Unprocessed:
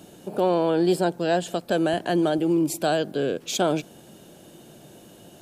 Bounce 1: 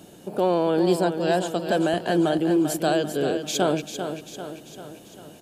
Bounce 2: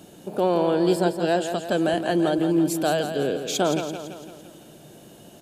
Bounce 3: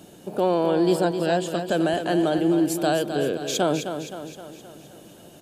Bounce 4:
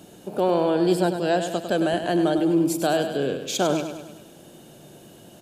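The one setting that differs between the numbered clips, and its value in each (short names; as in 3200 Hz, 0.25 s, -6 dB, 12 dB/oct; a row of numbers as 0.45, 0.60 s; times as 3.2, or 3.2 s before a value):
feedback echo, time: 0.393, 0.168, 0.26, 0.101 s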